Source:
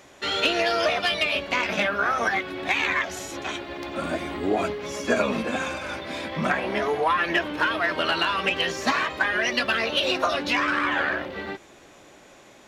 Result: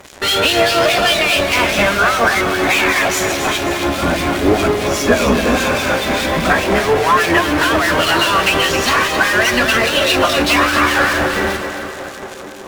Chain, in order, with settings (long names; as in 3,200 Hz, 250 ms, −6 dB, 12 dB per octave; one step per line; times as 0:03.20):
sub-octave generator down 2 octaves, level −6 dB
in parallel at −11 dB: fuzz pedal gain 47 dB, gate −45 dBFS
on the sum: tape delay 356 ms, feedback 88%, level −13 dB, low-pass 1,500 Hz
two-band tremolo in antiphase 4.9 Hz, crossover 2,100 Hz
echo with a time of its own for lows and highs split 390 Hz, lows 115 ms, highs 267 ms, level −8.5 dB
level +7.5 dB